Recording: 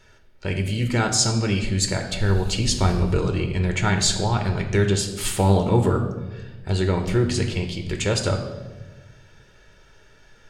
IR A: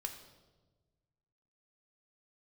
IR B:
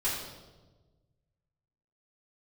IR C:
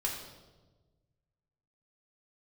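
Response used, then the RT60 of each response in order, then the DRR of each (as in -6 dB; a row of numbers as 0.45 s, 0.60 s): A; 1.3 s, 1.3 s, 1.3 s; 4.0 dB, -10.5 dB, -2.5 dB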